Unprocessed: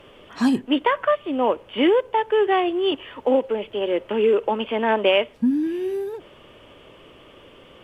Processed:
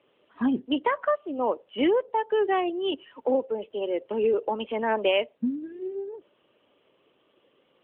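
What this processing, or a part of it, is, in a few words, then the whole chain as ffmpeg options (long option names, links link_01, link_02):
mobile call with aggressive noise cancelling: -af "highpass=180,afftdn=noise_reduction=12:noise_floor=-31,volume=-4.5dB" -ar 8000 -c:a libopencore_amrnb -b:a 12200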